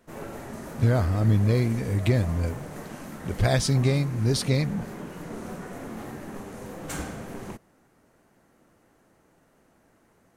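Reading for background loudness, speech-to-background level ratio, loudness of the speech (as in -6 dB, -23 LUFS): -38.5 LUFS, 14.0 dB, -24.5 LUFS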